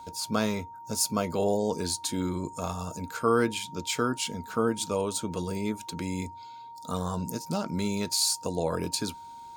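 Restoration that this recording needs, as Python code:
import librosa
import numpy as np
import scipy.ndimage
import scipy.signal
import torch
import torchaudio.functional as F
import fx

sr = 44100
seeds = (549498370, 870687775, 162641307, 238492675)

y = fx.notch(x, sr, hz=930.0, q=30.0)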